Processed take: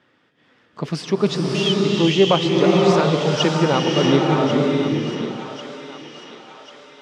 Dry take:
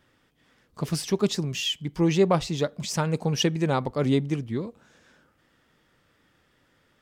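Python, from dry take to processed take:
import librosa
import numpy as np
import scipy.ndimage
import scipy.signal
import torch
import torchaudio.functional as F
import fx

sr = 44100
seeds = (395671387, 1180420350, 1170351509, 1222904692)

y = fx.bandpass_edges(x, sr, low_hz=170.0, high_hz=4100.0)
y = fx.echo_thinned(y, sr, ms=1093, feedback_pct=51, hz=650.0, wet_db=-11)
y = fx.rev_bloom(y, sr, seeds[0], attack_ms=640, drr_db=-2.0)
y = y * librosa.db_to_amplitude(5.5)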